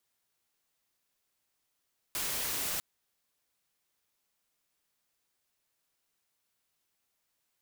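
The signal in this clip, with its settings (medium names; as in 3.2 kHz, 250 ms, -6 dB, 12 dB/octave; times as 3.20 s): noise white, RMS -34 dBFS 0.65 s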